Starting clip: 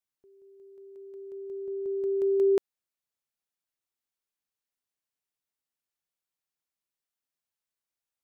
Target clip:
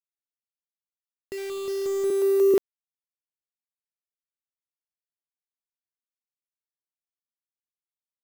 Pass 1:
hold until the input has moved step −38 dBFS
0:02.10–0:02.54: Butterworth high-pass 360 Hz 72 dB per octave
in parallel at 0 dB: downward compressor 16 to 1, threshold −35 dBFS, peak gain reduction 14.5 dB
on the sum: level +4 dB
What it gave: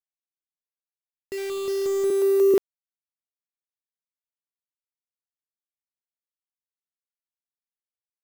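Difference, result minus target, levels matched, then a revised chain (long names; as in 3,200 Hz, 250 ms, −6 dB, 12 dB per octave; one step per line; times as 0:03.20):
downward compressor: peak gain reduction −10 dB
hold until the input has moved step −38 dBFS
0:02.10–0:02.54: Butterworth high-pass 360 Hz 72 dB per octave
in parallel at 0 dB: downward compressor 16 to 1, threshold −45.5 dBFS, peak gain reduction 24.5 dB
on the sum: level +4 dB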